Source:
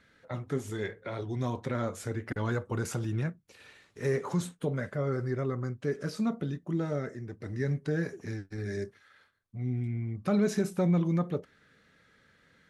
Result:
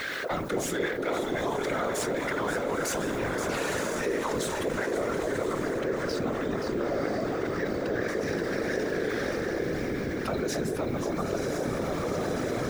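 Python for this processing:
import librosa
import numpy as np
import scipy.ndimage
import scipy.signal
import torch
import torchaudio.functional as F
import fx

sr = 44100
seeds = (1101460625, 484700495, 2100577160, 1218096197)

y = fx.law_mismatch(x, sr, coded='mu')
y = fx.echo_diffused(y, sr, ms=935, feedback_pct=62, wet_db=-7)
y = fx.rider(y, sr, range_db=10, speed_s=0.5)
y = scipy.signal.sosfilt(scipy.signal.butter(2, 340.0, 'highpass', fs=sr, output='sos'), y)
y = fx.high_shelf(y, sr, hz=3800.0, db=5.5)
y = fx.echo_alternate(y, sr, ms=264, hz=900.0, feedback_pct=67, wet_db=-5)
y = fx.whisperise(y, sr, seeds[0])
y = fx.peak_eq(y, sr, hz=10000.0, db=fx.steps((0.0, -7.0), (5.79, -14.5), (8.08, -7.5)), octaves=1.5)
y = fx.env_flatten(y, sr, amount_pct=70)
y = F.gain(torch.from_numpy(y), -1.5).numpy()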